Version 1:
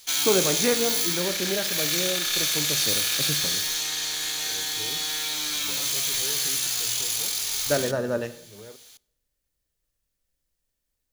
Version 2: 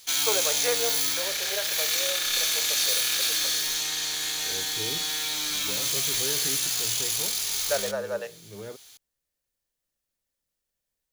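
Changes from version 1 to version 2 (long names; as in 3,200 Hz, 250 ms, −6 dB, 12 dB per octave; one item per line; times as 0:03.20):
first voice: add Butterworth high-pass 450 Hz 48 dB per octave
second voice +6.5 dB
reverb: off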